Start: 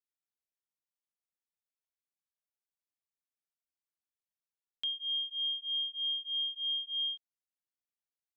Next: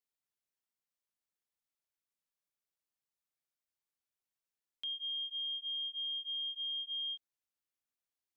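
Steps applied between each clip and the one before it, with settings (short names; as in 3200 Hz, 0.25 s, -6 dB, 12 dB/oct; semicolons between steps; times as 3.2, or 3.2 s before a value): limiter -35 dBFS, peak gain reduction 6 dB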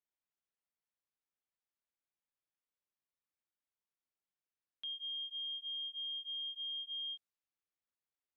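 low-pass opened by the level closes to 3000 Hz; gain -3 dB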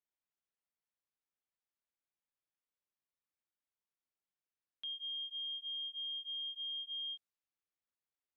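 nothing audible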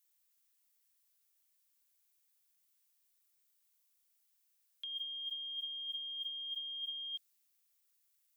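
tilt +5 dB/oct; negative-ratio compressor -39 dBFS, ratio -1; gain -3 dB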